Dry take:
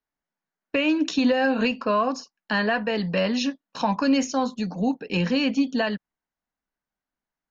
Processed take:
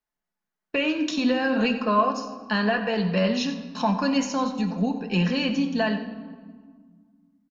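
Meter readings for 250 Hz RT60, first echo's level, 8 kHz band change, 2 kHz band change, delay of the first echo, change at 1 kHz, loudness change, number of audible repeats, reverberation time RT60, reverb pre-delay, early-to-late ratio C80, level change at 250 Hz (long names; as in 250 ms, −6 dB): 2.6 s, −14.0 dB, can't be measured, −1.0 dB, 92 ms, +1.0 dB, −0.5 dB, 1, 1.7 s, 5 ms, 9.5 dB, −0.5 dB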